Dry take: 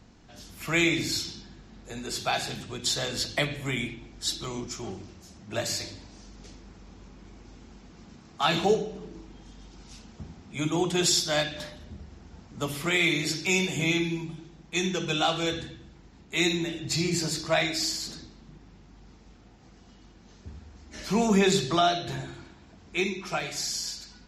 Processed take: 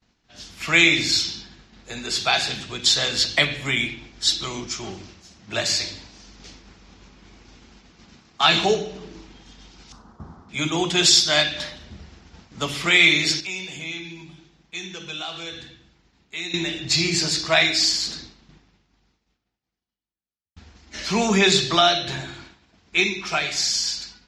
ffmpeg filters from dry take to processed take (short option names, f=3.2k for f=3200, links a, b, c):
-filter_complex "[0:a]asettb=1/sr,asplit=3[a][b][c];[a]atrim=end=9.924[d];[b]atrim=start=9.92:end=10.49,asetpts=PTS-STARTPTS,afade=t=in:d=0.004:c=qsin,afade=t=out:st=0.566:d=0.004:c=qsin,highshelf=f=1.7k:t=q:w=3:g=-13[e];[c]atrim=start=10.486[f];[d][e]acrossfade=d=0.004:c1=hsin:c2=qsin[g];[g][f]acrossfade=d=0.004:c1=qsin:c2=hsin,asettb=1/sr,asplit=3[h][i][j];[h]atrim=end=13.404[k];[i]atrim=start=13.4:end=16.54,asetpts=PTS-STARTPTS,afade=t=in:d=0.004:c=qsin,afade=t=out:st=3.136:d=0.004:c=qsin,acompressor=threshold=-48dB:ratio=2:attack=3.2:release=140:knee=1:detection=peak[l];[j]atrim=start=16.536[m];[k][l]acrossfade=d=0.004:c1=hsin:c2=qsin[n];[n][m]acrossfade=d=0.004:c1=qsin:c2=hsin,asplit=2[o][p];[o]atrim=end=20.56,asetpts=PTS-STARTPTS,afade=t=out:st=18.39:d=2.17[q];[p]atrim=start=20.56,asetpts=PTS-STARTPTS,afade=t=in:d=0.004:c=hsin[r];[q][r]concat=n=2:v=0:a=1,agate=range=-33dB:threshold=-44dB:ratio=3:detection=peak,lowpass=5.2k,tiltshelf=f=1.4k:g=-6,volume=7.5dB"